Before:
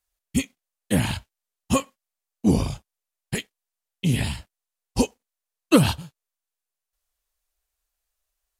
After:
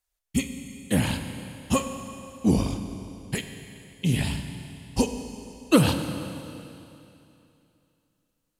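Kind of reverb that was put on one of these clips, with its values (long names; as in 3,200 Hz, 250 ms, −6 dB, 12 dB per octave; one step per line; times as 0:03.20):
four-comb reverb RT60 2.8 s, combs from 32 ms, DRR 7 dB
level −2 dB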